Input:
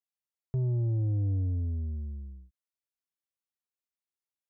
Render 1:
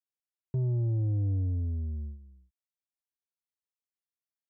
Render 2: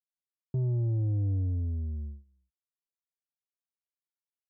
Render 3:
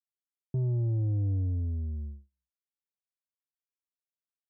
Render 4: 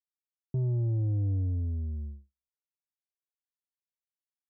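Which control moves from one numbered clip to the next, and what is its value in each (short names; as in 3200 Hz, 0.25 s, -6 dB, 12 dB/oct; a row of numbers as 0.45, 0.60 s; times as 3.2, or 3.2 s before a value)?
gate, range: -10, -23, -42, -55 dB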